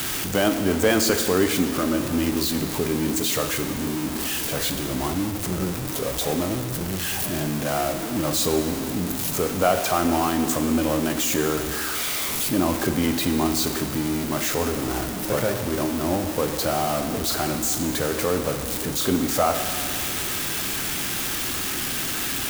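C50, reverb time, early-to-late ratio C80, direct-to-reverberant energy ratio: 8.5 dB, 2.2 s, 9.0 dB, 6.5 dB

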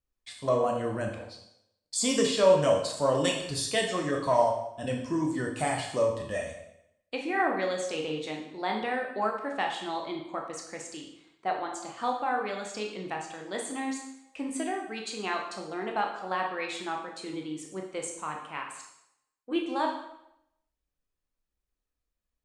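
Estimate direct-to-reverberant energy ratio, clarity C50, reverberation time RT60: 0.5 dB, 5.5 dB, 0.80 s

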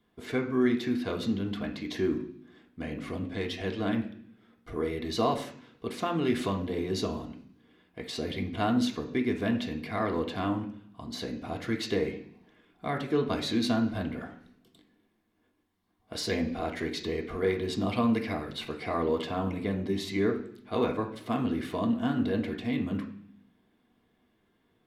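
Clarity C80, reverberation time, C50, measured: 13.5 dB, 0.60 s, 10.0 dB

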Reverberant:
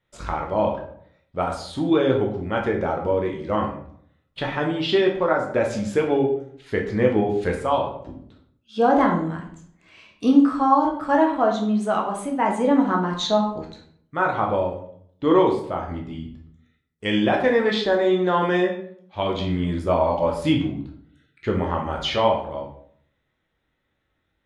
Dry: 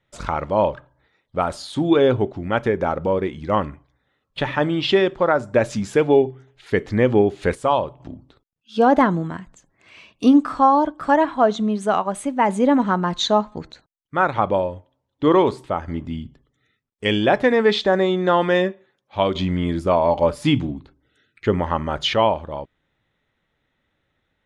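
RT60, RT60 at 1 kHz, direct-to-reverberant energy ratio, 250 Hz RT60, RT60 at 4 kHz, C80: 0.60 s, 0.55 s, 0.0 dB, 0.80 s, 0.40 s, 10.5 dB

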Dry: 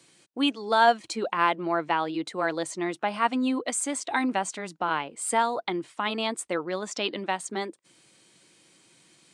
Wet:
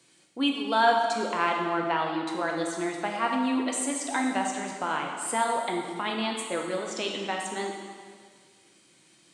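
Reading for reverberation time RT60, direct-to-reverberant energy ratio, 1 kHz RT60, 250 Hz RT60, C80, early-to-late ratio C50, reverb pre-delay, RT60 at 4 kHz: 1.8 s, 0.5 dB, 1.8 s, 1.9 s, 4.5 dB, 3.0 dB, 6 ms, 1.7 s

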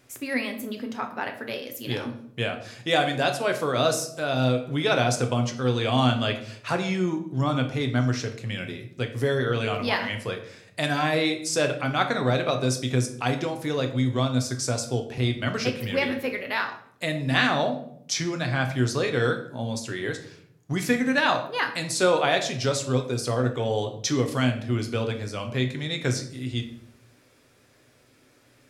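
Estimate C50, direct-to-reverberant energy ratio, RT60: 10.0 dB, 4.5 dB, 0.65 s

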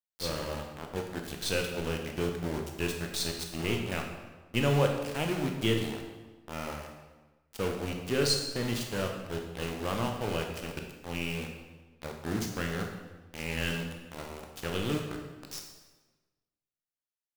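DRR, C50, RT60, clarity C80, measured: 2.5 dB, 5.0 dB, 1.2 s, 7.0 dB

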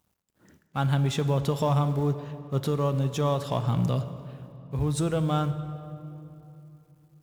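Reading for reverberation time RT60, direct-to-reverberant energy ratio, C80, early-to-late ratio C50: 3.0 s, 10.5 dB, 12.5 dB, 11.5 dB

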